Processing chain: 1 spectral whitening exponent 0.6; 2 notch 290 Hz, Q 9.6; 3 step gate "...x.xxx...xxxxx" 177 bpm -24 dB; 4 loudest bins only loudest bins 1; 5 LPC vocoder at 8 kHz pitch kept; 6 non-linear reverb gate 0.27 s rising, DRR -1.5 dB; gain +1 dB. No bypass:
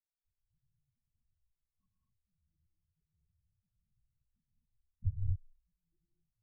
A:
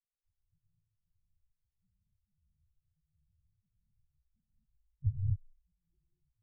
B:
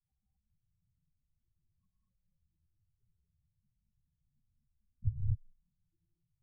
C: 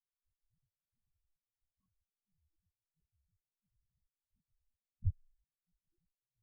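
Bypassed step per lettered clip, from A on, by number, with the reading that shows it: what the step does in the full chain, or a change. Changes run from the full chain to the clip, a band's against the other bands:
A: 1, loudness change +2.5 LU; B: 3, crest factor change +1.5 dB; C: 6, momentary loudness spread change +6 LU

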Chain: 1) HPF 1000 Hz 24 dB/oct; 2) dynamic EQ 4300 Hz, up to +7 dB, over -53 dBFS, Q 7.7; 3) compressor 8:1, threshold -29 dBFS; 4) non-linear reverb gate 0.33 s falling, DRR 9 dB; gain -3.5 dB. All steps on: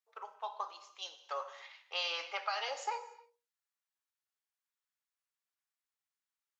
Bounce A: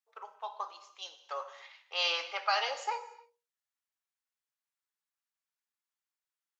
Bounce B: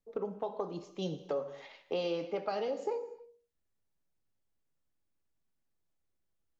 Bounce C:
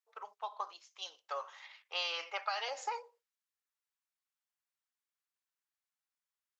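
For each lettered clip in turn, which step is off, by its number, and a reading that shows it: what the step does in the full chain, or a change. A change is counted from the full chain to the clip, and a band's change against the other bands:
3, momentary loudness spread change +5 LU; 1, 500 Hz band +20.5 dB; 4, momentary loudness spread change -1 LU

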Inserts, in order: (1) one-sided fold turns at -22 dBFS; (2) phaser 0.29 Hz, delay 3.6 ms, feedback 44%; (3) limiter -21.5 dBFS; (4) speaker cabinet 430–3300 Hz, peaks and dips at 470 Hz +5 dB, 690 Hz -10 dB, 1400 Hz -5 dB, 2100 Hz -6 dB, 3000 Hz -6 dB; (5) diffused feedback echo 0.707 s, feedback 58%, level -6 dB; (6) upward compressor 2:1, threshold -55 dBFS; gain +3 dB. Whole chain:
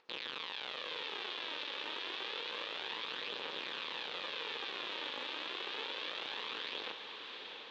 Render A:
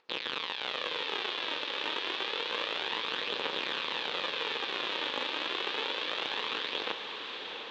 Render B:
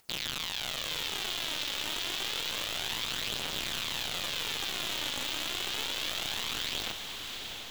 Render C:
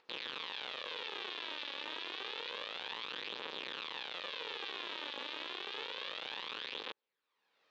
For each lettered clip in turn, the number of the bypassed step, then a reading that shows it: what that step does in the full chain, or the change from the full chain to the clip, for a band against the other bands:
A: 3, mean gain reduction 6.5 dB; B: 4, 8 kHz band +19.5 dB; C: 5, momentary loudness spread change -1 LU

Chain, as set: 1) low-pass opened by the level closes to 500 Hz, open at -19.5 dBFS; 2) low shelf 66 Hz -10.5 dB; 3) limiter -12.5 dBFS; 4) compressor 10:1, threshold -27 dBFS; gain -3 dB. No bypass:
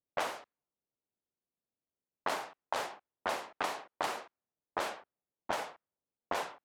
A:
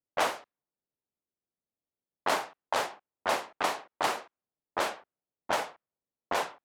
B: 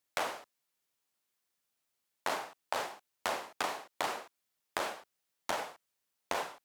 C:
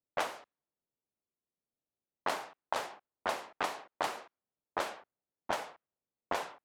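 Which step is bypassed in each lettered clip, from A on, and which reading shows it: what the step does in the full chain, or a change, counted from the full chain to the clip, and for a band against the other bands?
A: 4, mean gain reduction 3.5 dB; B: 1, 8 kHz band +3.0 dB; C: 3, crest factor change +2.0 dB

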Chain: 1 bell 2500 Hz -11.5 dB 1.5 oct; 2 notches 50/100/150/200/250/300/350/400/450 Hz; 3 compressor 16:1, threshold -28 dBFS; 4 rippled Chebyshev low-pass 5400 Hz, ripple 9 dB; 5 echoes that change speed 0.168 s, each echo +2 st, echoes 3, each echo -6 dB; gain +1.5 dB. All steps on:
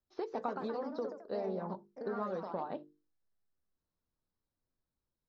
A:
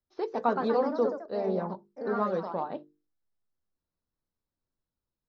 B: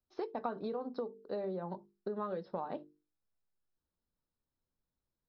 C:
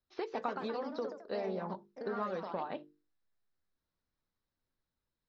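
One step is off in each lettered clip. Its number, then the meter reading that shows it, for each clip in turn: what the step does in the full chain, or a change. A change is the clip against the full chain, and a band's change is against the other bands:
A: 3, mean gain reduction 6.5 dB; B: 5, loudness change -1.0 LU; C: 1, 4 kHz band +6.5 dB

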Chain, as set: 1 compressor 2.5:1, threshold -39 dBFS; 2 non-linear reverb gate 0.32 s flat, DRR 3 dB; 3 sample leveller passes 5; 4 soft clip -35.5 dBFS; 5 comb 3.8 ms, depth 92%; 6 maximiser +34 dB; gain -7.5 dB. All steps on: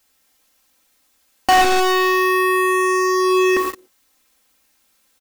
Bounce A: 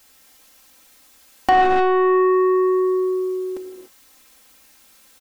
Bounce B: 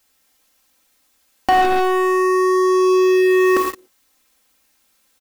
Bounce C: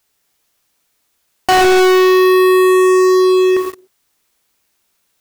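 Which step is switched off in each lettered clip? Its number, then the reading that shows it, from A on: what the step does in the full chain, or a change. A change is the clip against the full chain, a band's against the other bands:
3, crest factor change +1.5 dB; 4, distortion -10 dB; 5, 500 Hz band +7.0 dB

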